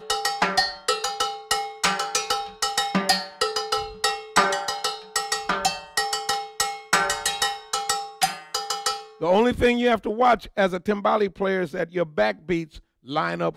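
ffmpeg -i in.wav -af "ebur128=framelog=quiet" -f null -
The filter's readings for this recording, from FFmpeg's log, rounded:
Integrated loudness:
  I:         -23.7 LUFS
  Threshold: -33.8 LUFS
Loudness range:
  LRA:         2.4 LU
  Threshold: -43.6 LUFS
  LRA low:   -24.5 LUFS
  LRA high:  -22.2 LUFS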